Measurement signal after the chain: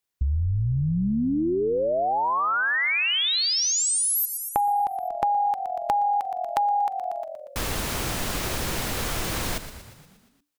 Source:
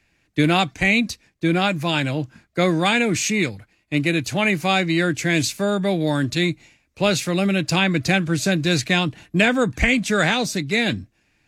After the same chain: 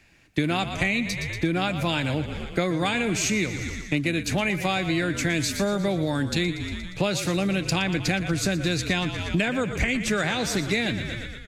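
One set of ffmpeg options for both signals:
ffmpeg -i in.wav -filter_complex "[0:a]asplit=2[link_01][link_02];[link_02]asplit=7[link_03][link_04][link_05][link_06][link_07][link_08][link_09];[link_03]adelay=118,afreqshift=-42,volume=-13dB[link_10];[link_04]adelay=236,afreqshift=-84,volume=-17.4dB[link_11];[link_05]adelay=354,afreqshift=-126,volume=-21.9dB[link_12];[link_06]adelay=472,afreqshift=-168,volume=-26.3dB[link_13];[link_07]adelay=590,afreqshift=-210,volume=-30.7dB[link_14];[link_08]adelay=708,afreqshift=-252,volume=-35.2dB[link_15];[link_09]adelay=826,afreqshift=-294,volume=-39.6dB[link_16];[link_10][link_11][link_12][link_13][link_14][link_15][link_16]amix=inputs=7:normalize=0[link_17];[link_01][link_17]amix=inputs=2:normalize=0,acompressor=threshold=-28dB:ratio=6,volume=6dB" out.wav

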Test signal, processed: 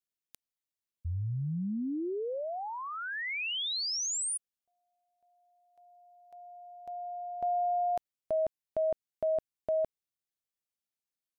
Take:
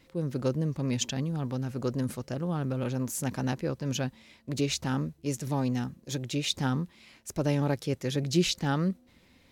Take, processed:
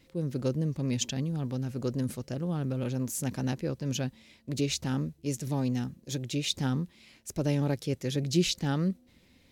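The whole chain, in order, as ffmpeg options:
ffmpeg -i in.wav -af "equalizer=frequency=1100:width_type=o:width=1.6:gain=-6" out.wav

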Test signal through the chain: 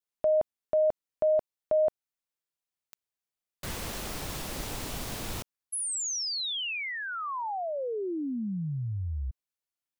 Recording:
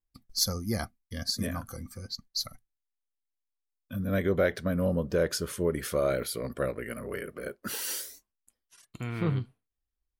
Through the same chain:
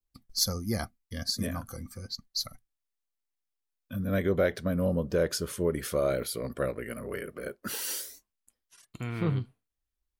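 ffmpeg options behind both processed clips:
ffmpeg -i in.wav -af "adynamicequalizer=threshold=0.00501:dfrequency=1700:dqfactor=1.3:tfrequency=1700:tqfactor=1.3:attack=5:release=100:ratio=0.375:range=2:mode=cutabove:tftype=bell" out.wav

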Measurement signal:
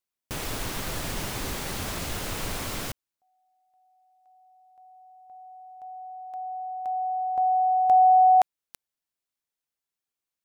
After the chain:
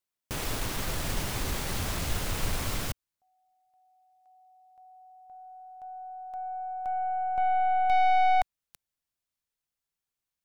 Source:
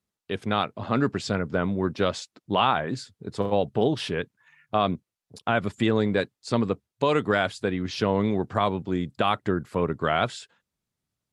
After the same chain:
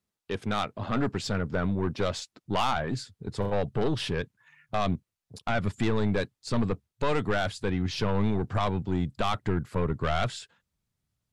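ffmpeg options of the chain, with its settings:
ffmpeg -i in.wav -af "aeval=exprs='(tanh(10*val(0)+0.25)-tanh(0.25))/10':channel_layout=same,asubboost=boost=2:cutoff=180" out.wav

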